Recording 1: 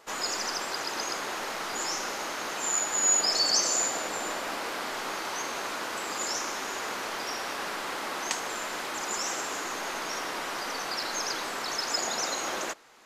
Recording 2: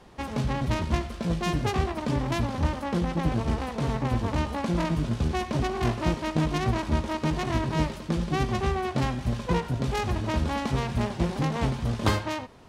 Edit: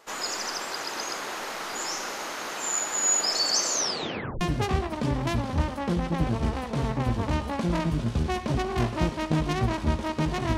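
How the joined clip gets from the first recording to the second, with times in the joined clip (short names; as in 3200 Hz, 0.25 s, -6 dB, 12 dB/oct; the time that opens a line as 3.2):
recording 1
3.7 tape stop 0.71 s
4.41 switch to recording 2 from 1.46 s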